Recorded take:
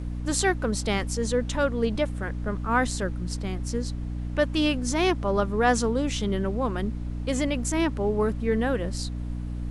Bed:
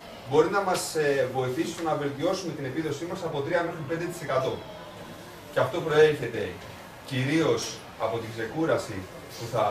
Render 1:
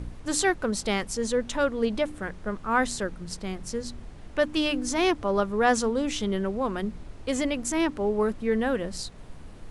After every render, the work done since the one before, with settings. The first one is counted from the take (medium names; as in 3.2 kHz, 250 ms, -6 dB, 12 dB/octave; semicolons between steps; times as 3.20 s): de-hum 60 Hz, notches 5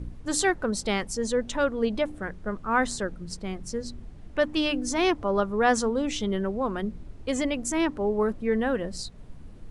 noise reduction 8 dB, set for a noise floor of -44 dBFS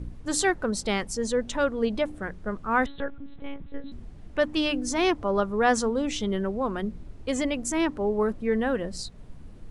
2.86–3.92 s: monotone LPC vocoder at 8 kHz 280 Hz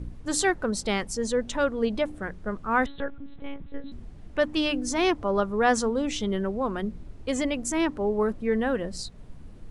no audible change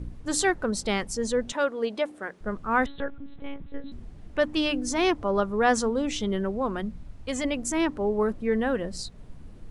1.52–2.41 s: high-pass 330 Hz; 6.82–7.44 s: peaking EQ 380 Hz -9.5 dB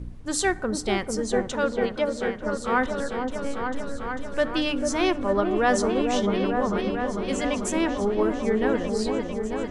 delay with an opening low-pass 446 ms, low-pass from 750 Hz, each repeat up 1 oct, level -3 dB; plate-style reverb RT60 1.1 s, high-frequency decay 0.45×, DRR 17.5 dB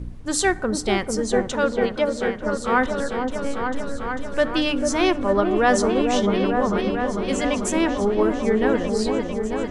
trim +3.5 dB